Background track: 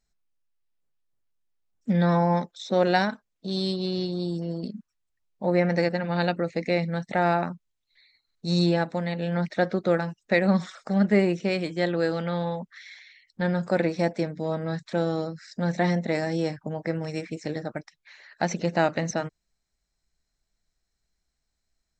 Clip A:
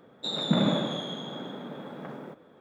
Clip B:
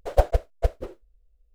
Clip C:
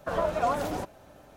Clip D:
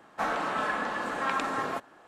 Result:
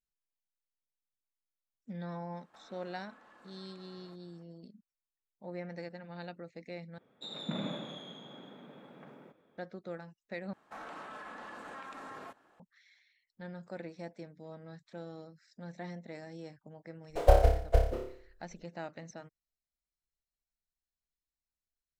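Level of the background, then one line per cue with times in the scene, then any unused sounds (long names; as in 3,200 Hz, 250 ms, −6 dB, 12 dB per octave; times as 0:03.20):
background track −19.5 dB
0:02.36: mix in D −14.5 dB + downward compressor 8 to 1, threshold −42 dBFS
0:06.98: overwrite with A −13 dB + parametric band 2,400 Hz +6 dB 0.55 octaves
0:10.53: overwrite with D −11.5 dB + brickwall limiter −26 dBFS
0:17.10: mix in B −3.5 dB + flutter between parallel walls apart 5 metres, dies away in 0.53 s
not used: C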